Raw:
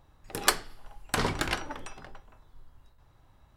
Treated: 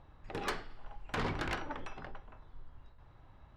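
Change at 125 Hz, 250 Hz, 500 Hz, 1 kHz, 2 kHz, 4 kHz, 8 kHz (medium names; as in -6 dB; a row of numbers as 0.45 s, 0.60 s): -4.5 dB, -5.0 dB, -5.5 dB, -6.5 dB, -8.0 dB, -13.0 dB, -20.5 dB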